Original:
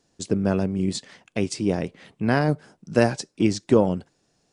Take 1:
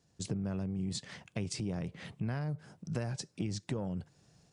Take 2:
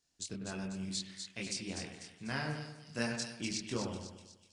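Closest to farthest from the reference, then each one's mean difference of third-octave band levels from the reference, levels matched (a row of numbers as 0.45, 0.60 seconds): 1, 2; 5.5, 10.0 decibels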